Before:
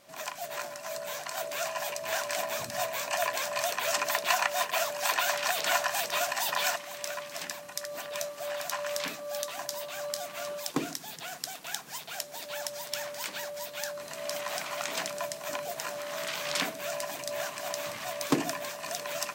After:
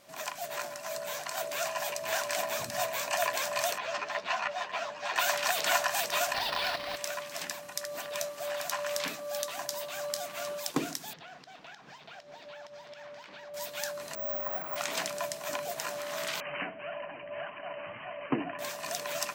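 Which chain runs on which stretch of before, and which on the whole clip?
3.78–5.16 s: distance through air 170 m + three-phase chorus
6.34–6.96 s: square wave that keeps the level + resonant high shelf 5.6 kHz -7.5 dB, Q 3 + compression 3:1, threshold -30 dBFS
11.13–13.54 s: compression 5:1, threshold -41 dBFS + distance through air 210 m
14.15–14.76 s: low-pass 1.2 kHz + careless resampling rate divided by 2×, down none, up zero stuff
16.40–18.59 s: brick-wall FIR low-pass 3.1 kHz + flange 1.7 Hz, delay 2.8 ms, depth 8.7 ms, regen +44%
whole clip: none

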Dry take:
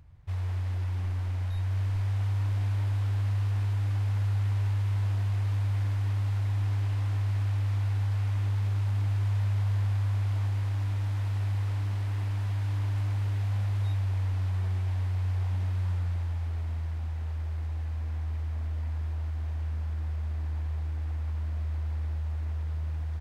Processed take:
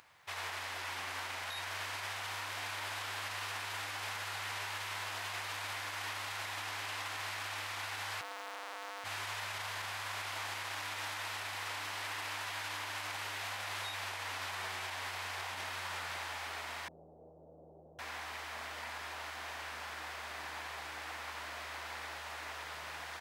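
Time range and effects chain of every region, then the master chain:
8.21–9.04 s: square wave that keeps the level + high-pass 730 Hz + tilt EQ -4 dB/octave
16.88–17.99 s: comb filter that takes the minimum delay 1.4 ms + steep low-pass 580 Hz + peaking EQ 85 Hz -9 dB 0.51 oct
whole clip: Bessel high-pass 1.2 kHz, order 2; peak limiter -45.5 dBFS; trim +14 dB

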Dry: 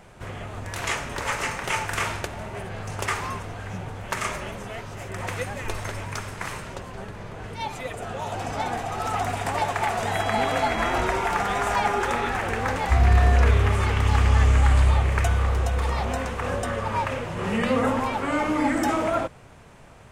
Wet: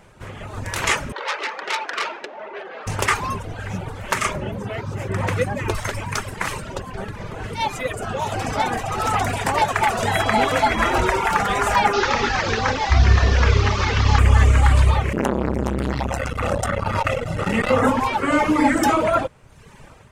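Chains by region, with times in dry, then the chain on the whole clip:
1.12–2.87 s: high-pass 350 Hz 24 dB/octave + distance through air 240 m + transformer saturation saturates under 4 kHz
4.33–5.75 s: high-pass 86 Hz + tilt EQ -2 dB/octave
11.93–14.19 s: one-bit delta coder 32 kbps, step -24 dBFS + hum notches 60/120/180/240/300/360/420/480/540/600 Hz
15.13–17.83 s: comb 1.5 ms, depth 79% + transformer saturation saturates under 890 Hz
whole clip: reverb removal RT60 1 s; band-stop 710 Hz, Q 12; level rider gain up to 8.5 dB

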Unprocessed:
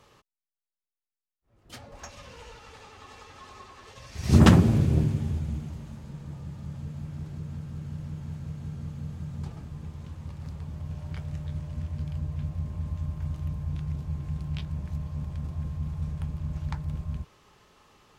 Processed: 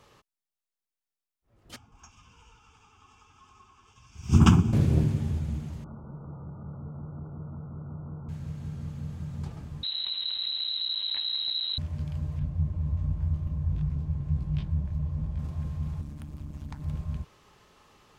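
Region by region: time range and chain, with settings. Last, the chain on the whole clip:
1.76–4.73 s: static phaser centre 2.8 kHz, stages 8 + upward expansion, over -29 dBFS
5.84–8.29 s: companding laws mixed up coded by mu + brick-wall FIR low-pass 1.5 kHz + bass shelf 170 Hz -8 dB
9.83–11.78 s: comb filter that takes the minimum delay 0.97 ms + frequency inversion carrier 4 kHz + level flattener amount 70%
12.39–15.39 s: tilt EQ -2 dB/octave + detune thickener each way 48 cents
16.01–16.82 s: treble shelf 7.3 kHz +9 dB + compression 4:1, threshold -32 dBFS + AM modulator 140 Hz, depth 65%
whole clip: none

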